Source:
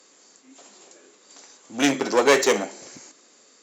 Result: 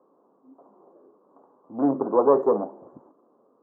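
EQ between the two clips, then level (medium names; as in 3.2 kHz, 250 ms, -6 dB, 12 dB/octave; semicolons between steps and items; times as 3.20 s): elliptic low-pass 1.1 kHz, stop band 50 dB; 0.0 dB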